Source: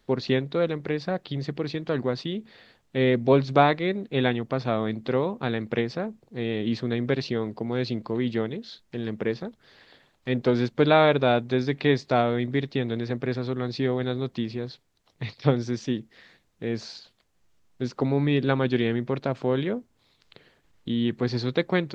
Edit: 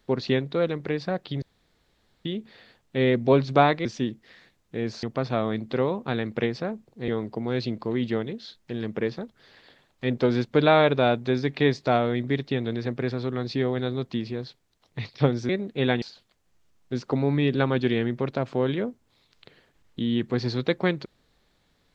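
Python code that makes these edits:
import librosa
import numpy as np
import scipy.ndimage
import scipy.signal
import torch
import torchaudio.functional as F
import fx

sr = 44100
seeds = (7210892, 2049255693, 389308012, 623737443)

y = fx.edit(x, sr, fx.room_tone_fill(start_s=1.42, length_s=0.83),
    fx.swap(start_s=3.85, length_s=0.53, other_s=15.73, other_length_s=1.18),
    fx.cut(start_s=6.43, length_s=0.89), tone=tone)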